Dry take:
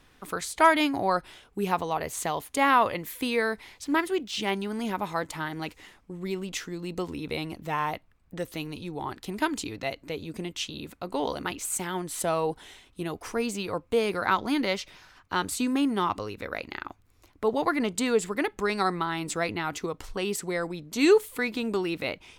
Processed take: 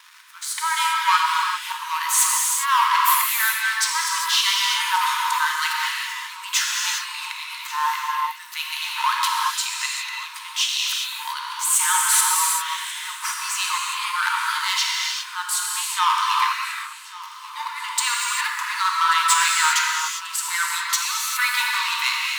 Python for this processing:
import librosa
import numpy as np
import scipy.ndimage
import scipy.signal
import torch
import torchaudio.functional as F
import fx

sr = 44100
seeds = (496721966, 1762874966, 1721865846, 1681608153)

p1 = fx.dynamic_eq(x, sr, hz=2200.0, q=2.4, threshold_db=-45.0, ratio=4.0, max_db=-5)
p2 = fx.auto_swell(p1, sr, attack_ms=665.0)
p3 = fx.rider(p2, sr, range_db=4, speed_s=0.5)
p4 = p2 + F.gain(torch.from_numpy(p3), 2.5).numpy()
p5 = fx.leveller(p4, sr, passes=3)
p6 = fx.brickwall_highpass(p5, sr, low_hz=890.0)
p7 = p6 + fx.echo_feedback(p6, sr, ms=1136, feedback_pct=55, wet_db=-18.5, dry=0)
y = fx.rev_gated(p7, sr, seeds[0], gate_ms=430, shape='flat', drr_db=-2.5)